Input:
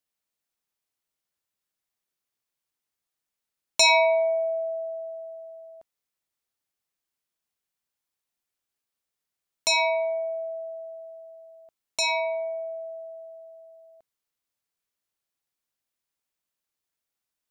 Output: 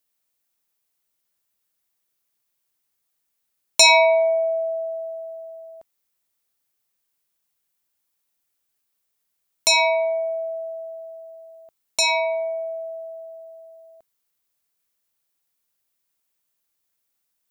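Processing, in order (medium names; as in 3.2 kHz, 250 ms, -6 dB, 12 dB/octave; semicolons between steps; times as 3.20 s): treble shelf 9.9 kHz +9.5 dB; trim +4.5 dB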